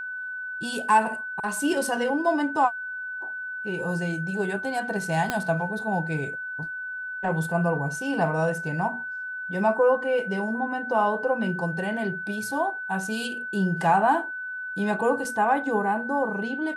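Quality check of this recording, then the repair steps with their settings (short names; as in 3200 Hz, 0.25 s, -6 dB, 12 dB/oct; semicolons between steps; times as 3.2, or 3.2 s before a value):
tone 1500 Hz -31 dBFS
5.3 pop -10 dBFS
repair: de-click; notch 1500 Hz, Q 30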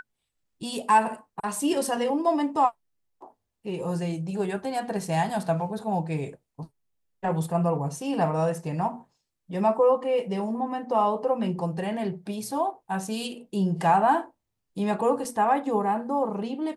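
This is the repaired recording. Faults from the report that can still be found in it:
5.3 pop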